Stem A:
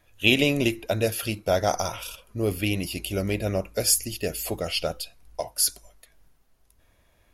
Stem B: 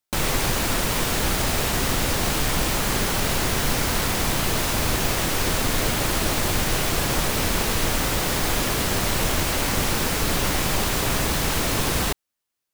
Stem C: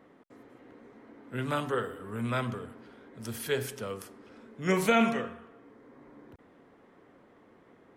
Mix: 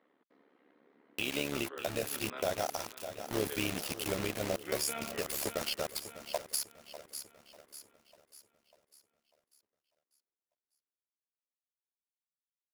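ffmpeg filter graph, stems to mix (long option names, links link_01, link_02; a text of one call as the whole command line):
ffmpeg -i stem1.wav -i stem2.wav -i stem3.wav -filter_complex "[0:a]alimiter=limit=-11.5dB:level=0:latency=1:release=415,acrusher=bits=4:mix=0:aa=0.000001,adelay=950,volume=-2dB,asplit=2[link_01][link_02];[link_02]volume=-14.5dB[link_03];[2:a]highpass=frequency=210:width=0.5412,highpass=frequency=210:width=1.3066,highshelf=frequency=5900:width_type=q:width=1.5:gain=-14,volume=-9dB,asplit=2[link_04][link_05];[link_05]volume=-12dB[link_06];[link_03][link_06]amix=inputs=2:normalize=0,aecho=0:1:596|1192|1788|2384|2980|3576|4172:1|0.47|0.221|0.104|0.0488|0.0229|0.0108[link_07];[link_01][link_04][link_07]amix=inputs=3:normalize=0,lowshelf=frequency=160:gain=-9.5,tremolo=f=71:d=0.71,alimiter=limit=-20.5dB:level=0:latency=1:release=349" out.wav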